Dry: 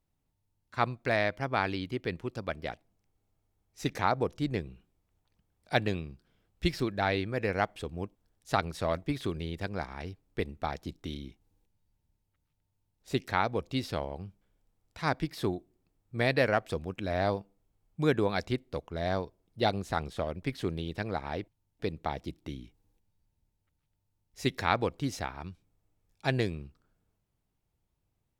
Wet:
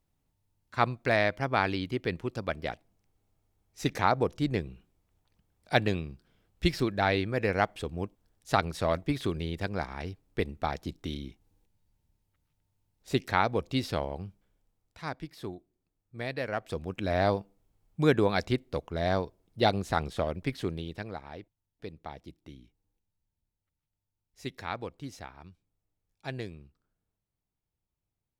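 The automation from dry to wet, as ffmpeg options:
ffmpeg -i in.wav -af "volume=13.5dB,afade=type=out:start_time=14.19:duration=0.94:silence=0.298538,afade=type=in:start_time=16.47:duration=0.59:silence=0.281838,afade=type=out:start_time=20.27:duration=0.99:silence=0.266073" out.wav

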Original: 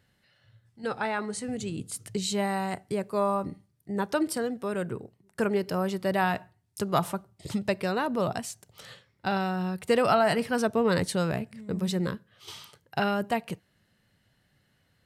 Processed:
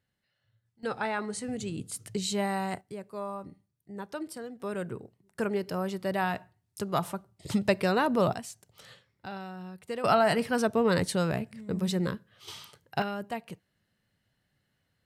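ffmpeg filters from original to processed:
ffmpeg -i in.wav -af "asetnsamples=nb_out_samples=441:pad=0,asendcmd='0.83 volume volume -1.5dB;2.81 volume volume -10.5dB;4.6 volume volume -3.5dB;7.49 volume volume 2.5dB;8.34 volume volume -5dB;9.26 volume volume -12dB;10.04 volume volume -0.5dB;13.02 volume volume -7.5dB',volume=-13dB" out.wav

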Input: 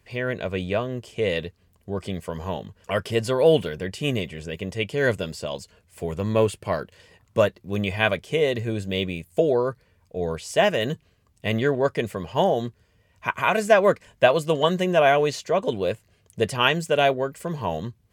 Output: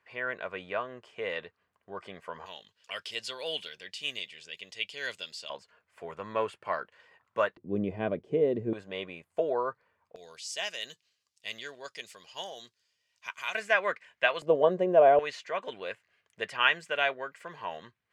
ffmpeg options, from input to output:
ffmpeg -i in.wav -af "asetnsamples=nb_out_samples=441:pad=0,asendcmd='2.46 bandpass f 3900;5.5 bandpass f 1300;7.57 bandpass f 310;8.73 bandpass f 1100;10.16 bandpass f 5100;13.55 bandpass f 2000;14.42 bandpass f 540;15.19 bandpass f 1800',bandpass=frequency=1300:width_type=q:width=1.5:csg=0" out.wav

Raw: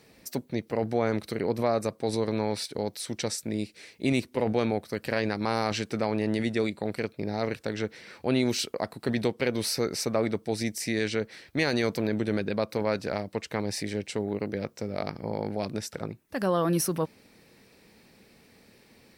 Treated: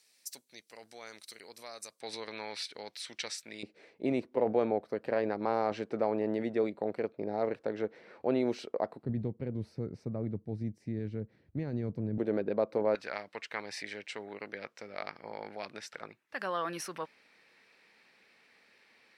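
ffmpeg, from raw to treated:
ffmpeg -i in.wav -af "asetnsamples=nb_out_samples=441:pad=0,asendcmd='2.01 bandpass f 2600;3.63 bandpass f 570;9.03 bandpass f 100;12.18 bandpass f 510;12.95 bandpass f 1900',bandpass=frequency=7700:width_type=q:width=0.96:csg=0" out.wav

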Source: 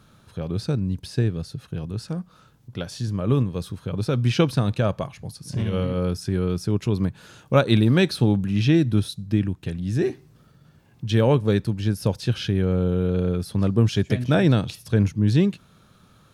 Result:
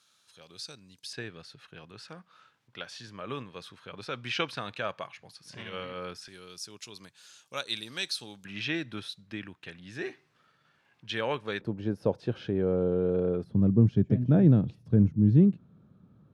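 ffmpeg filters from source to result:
ffmpeg -i in.wav -af "asetnsamples=nb_out_samples=441:pad=0,asendcmd='1.13 bandpass f 2100;6.28 bandpass f 6200;8.45 bandpass f 2000;11.61 bandpass f 510;13.44 bandpass f 190',bandpass=frequency=5900:width_type=q:width=0.95:csg=0" out.wav

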